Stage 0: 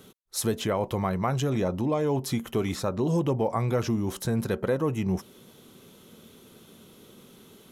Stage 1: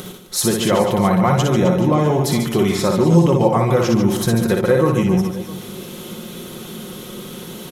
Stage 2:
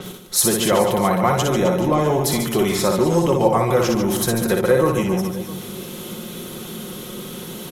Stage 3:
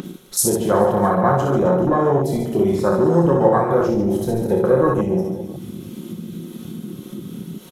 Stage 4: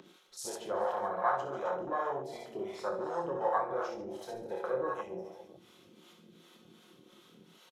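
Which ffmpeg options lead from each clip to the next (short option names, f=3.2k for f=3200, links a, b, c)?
-filter_complex "[0:a]asplit=2[a][b];[b]acompressor=mode=upward:threshold=-29dB:ratio=2.5,volume=2.5dB[c];[a][c]amix=inputs=2:normalize=0,aecho=1:1:5.6:0.49,aecho=1:1:60|144|261.6|426.2|656.7:0.631|0.398|0.251|0.158|0.1,volume=1dB"
-filter_complex "[0:a]acrossover=split=300[a][b];[a]asoftclip=type=tanh:threshold=-22.5dB[c];[c][b]amix=inputs=2:normalize=0,adynamicequalizer=threshold=0.00891:dfrequency=8000:dqfactor=0.7:tfrequency=8000:tqfactor=0.7:attack=5:release=100:ratio=0.375:range=3:mode=boostabove:tftype=highshelf"
-af "aecho=1:1:29|71:0.531|0.335,afwtdn=0.1,acompressor=mode=upward:threshold=-25dB:ratio=2.5"
-filter_complex "[0:a]acrossover=split=510 6400:gain=0.0794 1 0.158[a][b][c];[a][b][c]amix=inputs=3:normalize=0,acrossover=split=540[d][e];[d]aeval=exprs='val(0)*(1-0.7/2+0.7/2*cos(2*PI*2.7*n/s))':c=same[f];[e]aeval=exprs='val(0)*(1-0.7/2-0.7/2*cos(2*PI*2.7*n/s))':c=same[g];[f][g]amix=inputs=2:normalize=0,asplit=2[h][i];[i]adelay=23,volume=-12dB[j];[h][j]amix=inputs=2:normalize=0,volume=-8.5dB"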